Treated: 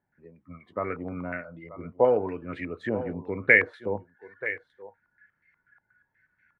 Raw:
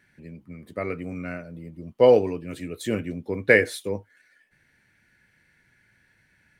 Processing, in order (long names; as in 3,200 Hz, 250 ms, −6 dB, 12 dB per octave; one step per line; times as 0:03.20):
single-tap delay 932 ms −18 dB
noise reduction from a noise print of the clip's start 14 dB
downward compressor 1.5 to 1, threshold −34 dBFS, peak gain reduction 8.5 dB
low-pass on a step sequencer 8.3 Hz 840–2,100 Hz